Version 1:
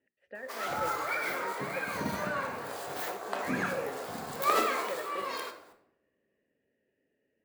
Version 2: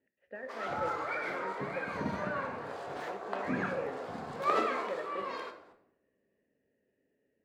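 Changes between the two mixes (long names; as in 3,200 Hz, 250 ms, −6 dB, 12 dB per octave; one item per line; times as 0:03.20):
speech: send +10.5 dB
master: add head-to-tape spacing loss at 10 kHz 21 dB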